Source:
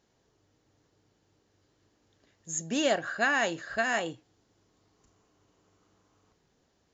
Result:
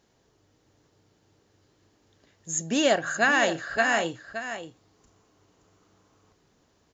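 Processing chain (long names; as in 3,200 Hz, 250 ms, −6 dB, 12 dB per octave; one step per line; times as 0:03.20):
single-tap delay 572 ms −10 dB
level +4.5 dB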